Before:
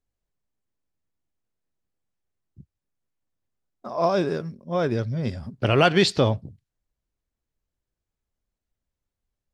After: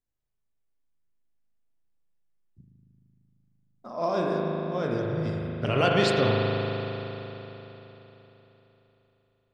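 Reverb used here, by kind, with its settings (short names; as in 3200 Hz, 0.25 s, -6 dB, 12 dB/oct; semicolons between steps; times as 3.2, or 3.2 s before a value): spring tank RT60 3.8 s, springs 38 ms, chirp 30 ms, DRR -2.5 dB; gain -7 dB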